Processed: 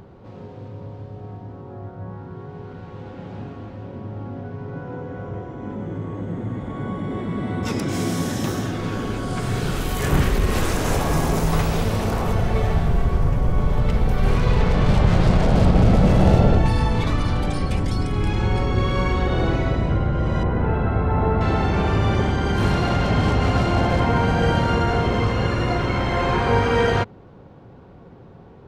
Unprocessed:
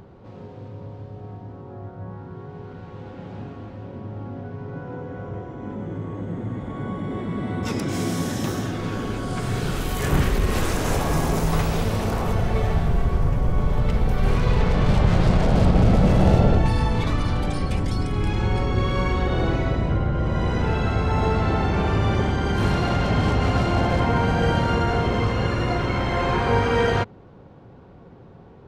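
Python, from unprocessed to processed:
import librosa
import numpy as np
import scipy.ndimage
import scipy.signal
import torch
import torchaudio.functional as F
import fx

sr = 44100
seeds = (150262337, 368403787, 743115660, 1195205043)

y = fx.lowpass(x, sr, hz=1600.0, slope=12, at=(20.43, 21.41))
y = y * librosa.db_to_amplitude(1.5)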